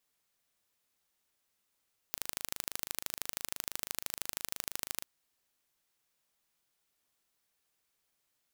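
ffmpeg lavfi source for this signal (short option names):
-f lavfi -i "aevalsrc='0.473*eq(mod(n,1696),0)*(0.5+0.5*eq(mod(n,3392),0))':d=2.9:s=44100"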